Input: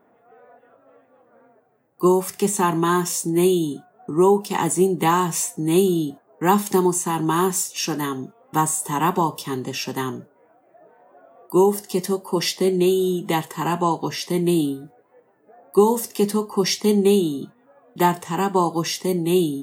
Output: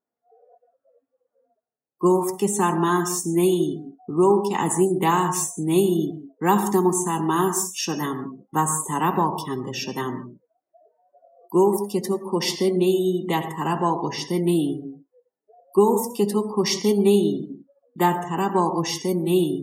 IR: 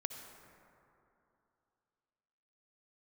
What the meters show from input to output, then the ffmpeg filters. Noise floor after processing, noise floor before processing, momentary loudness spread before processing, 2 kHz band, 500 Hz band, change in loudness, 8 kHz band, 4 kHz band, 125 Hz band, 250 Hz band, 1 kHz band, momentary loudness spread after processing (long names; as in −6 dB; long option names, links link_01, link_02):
below −85 dBFS, −59 dBFS, 9 LU, −1.5 dB, −1.0 dB, −1.0 dB, −2.0 dB, −2.0 dB, −1.0 dB, −1.0 dB, −1.0 dB, 9 LU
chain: -filter_complex "[1:a]atrim=start_sample=2205,afade=type=out:start_time=0.24:duration=0.01,atrim=end_sample=11025[link_01];[0:a][link_01]afir=irnorm=-1:irlink=0,afftdn=noise_reduction=29:noise_floor=-39"